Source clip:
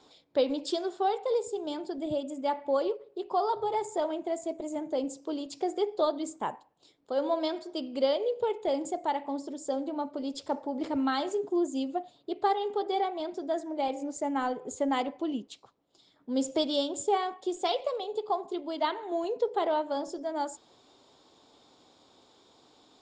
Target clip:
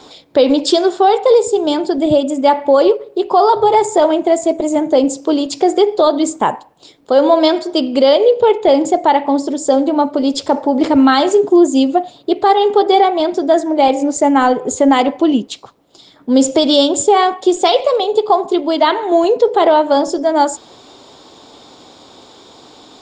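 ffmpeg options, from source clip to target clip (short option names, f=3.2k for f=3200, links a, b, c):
-filter_complex "[0:a]asettb=1/sr,asplit=3[a][b][c];[a]atrim=end=8.264[d];[b]atrim=start=8.26:end=9.35,asetpts=PTS-STARTPTS,afade=t=in:d=0.004:c=qsin,afade=t=out:st=1.086:d=0.004:c=qsin,lowpass=6.3k[e];[c]atrim=start=9.346[f];[d][e]acrossfade=d=0.004:c1=hsin:c2=qsin[g];[g][f]acrossfade=d=0.004:c1=qsin:c2=hsin,alimiter=level_in=20.5dB:limit=-1dB:release=50:level=0:latency=1,volume=-1dB"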